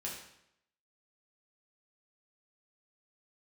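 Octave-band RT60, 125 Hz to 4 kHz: 0.80, 0.80, 0.75, 0.75, 0.75, 0.70 seconds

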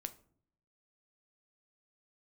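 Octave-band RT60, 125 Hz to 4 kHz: 0.95, 0.85, 0.65, 0.50, 0.35, 0.30 seconds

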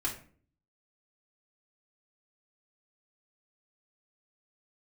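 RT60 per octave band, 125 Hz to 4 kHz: 0.75, 0.65, 0.50, 0.40, 0.40, 0.30 seconds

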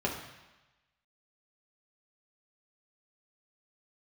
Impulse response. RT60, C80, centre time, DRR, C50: 1.1 s, 8.0 dB, 33 ms, −3.0 dB, 6.0 dB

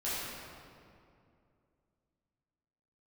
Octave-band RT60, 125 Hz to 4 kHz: 3.0, 3.0, 2.7, 2.3, 1.9, 1.5 seconds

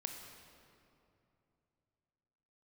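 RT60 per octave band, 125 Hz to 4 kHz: 3.6, 3.2, 2.9, 2.6, 2.1, 1.7 seconds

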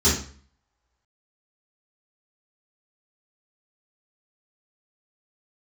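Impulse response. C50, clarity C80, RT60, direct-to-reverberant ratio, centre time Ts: 4.5 dB, 10.5 dB, 0.45 s, −12.0 dB, 37 ms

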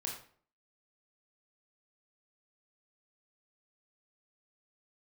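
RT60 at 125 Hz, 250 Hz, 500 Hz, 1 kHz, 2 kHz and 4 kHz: 0.50, 0.55, 0.55, 0.50, 0.40, 0.35 seconds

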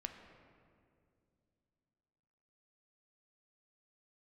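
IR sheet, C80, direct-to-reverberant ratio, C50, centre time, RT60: 8.0 dB, 5.0 dB, 7.0 dB, 38 ms, 2.4 s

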